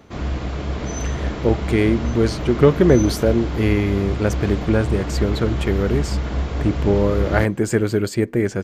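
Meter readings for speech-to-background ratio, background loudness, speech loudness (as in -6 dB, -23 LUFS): 5.5 dB, -25.5 LUFS, -20.0 LUFS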